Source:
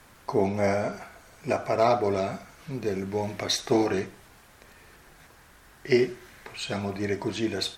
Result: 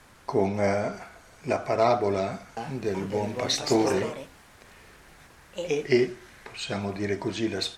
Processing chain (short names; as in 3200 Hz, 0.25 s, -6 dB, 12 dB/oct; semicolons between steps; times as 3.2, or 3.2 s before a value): LPF 11000 Hz 12 dB/oct; 2.19–6.12 echoes that change speed 0.377 s, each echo +3 st, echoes 2, each echo -6 dB